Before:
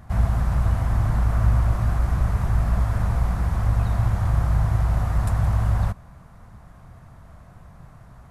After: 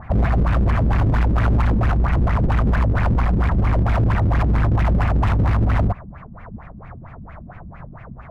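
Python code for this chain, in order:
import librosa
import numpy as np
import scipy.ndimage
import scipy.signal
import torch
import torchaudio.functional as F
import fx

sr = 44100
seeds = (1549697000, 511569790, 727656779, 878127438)

y = fx.filter_lfo_lowpass(x, sr, shape='sine', hz=4.4, low_hz=200.0, high_hz=2500.0, q=5.1)
y = np.clip(y, -10.0 ** (-20.5 / 20.0), 10.0 ** (-20.5 / 20.0))
y = y * librosa.db_to_amplitude(6.5)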